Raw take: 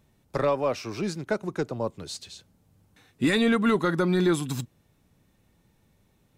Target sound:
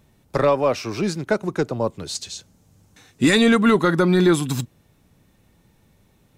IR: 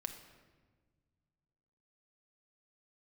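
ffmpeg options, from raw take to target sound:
-filter_complex "[0:a]asettb=1/sr,asplit=3[s0][s1][s2];[s0]atrim=end=2.154[s3];[s1]atrim=start=2.15:end=3.61,asetpts=PTS-STARTPTS,afade=t=in:d=0.004:c=qsin,afade=t=out:st=1.456:d=0.004:c=qsin,equalizer=f=6500:t=o:w=0.82:g=8[s4];[s2]atrim=start=3.606[s5];[s3][s4]acrossfade=d=0.004:c1=hsin:c2=qsin[s6];[s6][s5]acrossfade=d=0.004:c1=qsin:c2=hsin,volume=2.11"

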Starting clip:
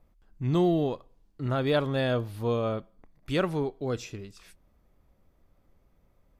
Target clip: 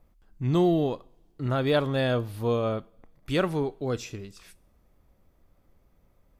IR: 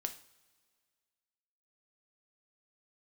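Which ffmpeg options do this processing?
-filter_complex "[0:a]asplit=2[s0][s1];[1:a]atrim=start_sample=2205,highshelf=f=6200:g=12[s2];[s1][s2]afir=irnorm=-1:irlink=0,volume=0.224[s3];[s0][s3]amix=inputs=2:normalize=0"

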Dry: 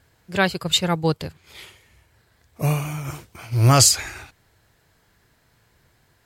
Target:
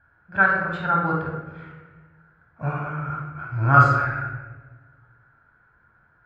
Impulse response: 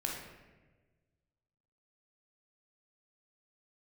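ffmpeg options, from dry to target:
-filter_complex "[0:a]lowpass=f=1400:t=q:w=14[s0];[1:a]atrim=start_sample=2205[s1];[s0][s1]afir=irnorm=-1:irlink=0,volume=0.376"

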